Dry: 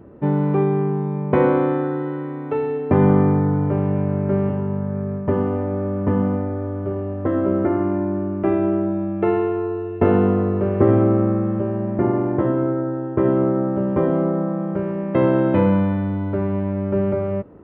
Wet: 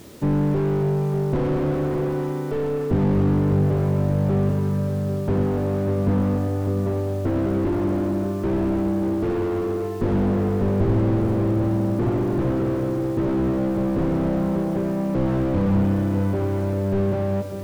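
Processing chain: split-band echo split 520 Hz, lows 0.594 s, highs 0.288 s, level -10.5 dB; requantised 8-bit, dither triangular; slew limiter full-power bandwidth 33 Hz

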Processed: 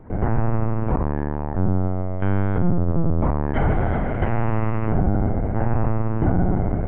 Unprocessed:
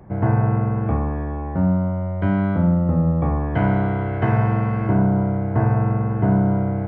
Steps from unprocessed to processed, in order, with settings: LPC vocoder at 8 kHz pitch kept; maximiser +9.5 dB; gain -8.5 dB

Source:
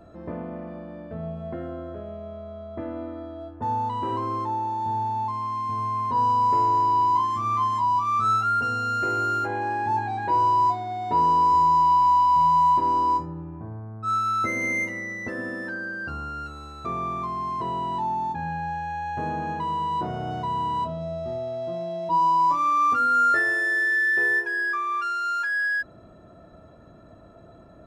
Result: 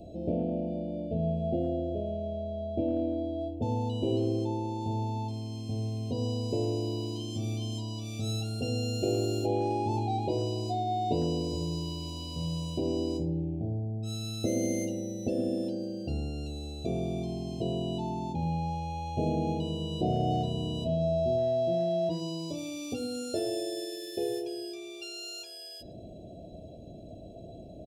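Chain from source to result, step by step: inverse Chebyshev band-stop 990–2000 Hz, stop band 40 dB; speakerphone echo 0.11 s, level -19 dB; gain +4 dB

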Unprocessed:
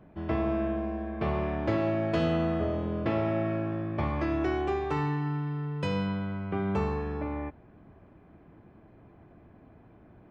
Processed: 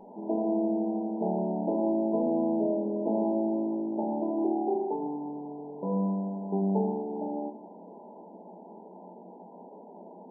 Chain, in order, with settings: requantised 6-bit, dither triangular; brick-wall FIR band-pass 180–1000 Hz; shoebox room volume 430 m³, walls furnished, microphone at 1.4 m

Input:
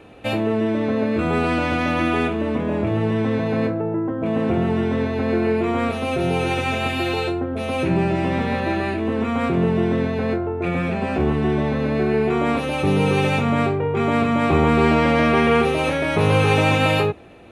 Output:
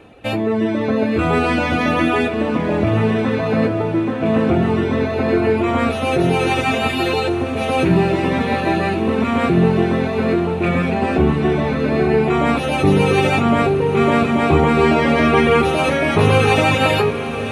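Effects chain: reverb removal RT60 1 s; AGC gain up to 5.5 dB; resonator 56 Hz, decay 1.5 s, harmonics all, mix 40%; on a send: diffused feedback echo 0.95 s, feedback 71%, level -11.5 dB; on the sum: gain +5 dB

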